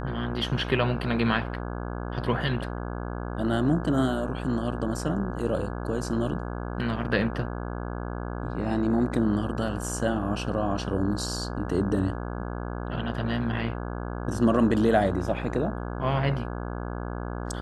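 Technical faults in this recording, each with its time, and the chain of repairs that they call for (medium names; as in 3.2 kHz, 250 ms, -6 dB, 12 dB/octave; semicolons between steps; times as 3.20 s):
buzz 60 Hz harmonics 28 -33 dBFS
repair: de-hum 60 Hz, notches 28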